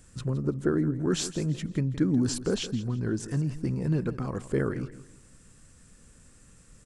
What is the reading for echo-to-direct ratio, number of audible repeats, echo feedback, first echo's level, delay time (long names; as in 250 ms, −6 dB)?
−14.0 dB, 2, 30%, −14.5 dB, 166 ms